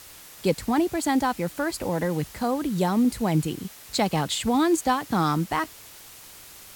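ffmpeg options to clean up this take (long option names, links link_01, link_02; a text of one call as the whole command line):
ffmpeg -i in.wav -af "afwtdn=0.0056" out.wav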